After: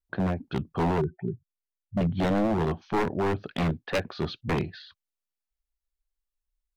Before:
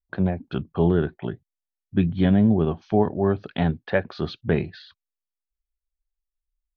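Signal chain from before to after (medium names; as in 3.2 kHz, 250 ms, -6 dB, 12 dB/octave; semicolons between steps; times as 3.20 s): 0.98–2.01 s: spectral contrast enhancement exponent 2.8; wavefolder -18 dBFS; trim -1 dB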